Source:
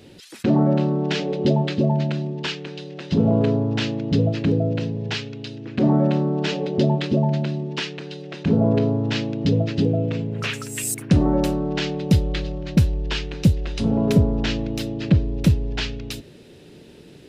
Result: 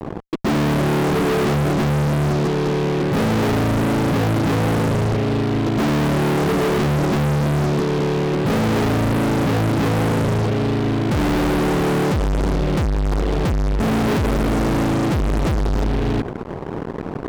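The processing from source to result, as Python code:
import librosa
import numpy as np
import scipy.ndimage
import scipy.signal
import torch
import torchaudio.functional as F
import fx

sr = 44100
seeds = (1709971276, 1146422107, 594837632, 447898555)

p1 = scipy.signal.sosfilt(scipy.signal.butter(16, 530.0, 'lowpass', fs=sr, output='sos'), x)
p2 = fx.level_steps(p1, sr, step_db=14)
p3 = p1 + F.gain(torch.from_numpy(p2), -2.0).numpy()
p4 = fx.fuzz(p3, sr, gain_db=42.0, gate_db=-44.0)
y = F.gain(torch.from_numpy(p4), -4.0).numpy()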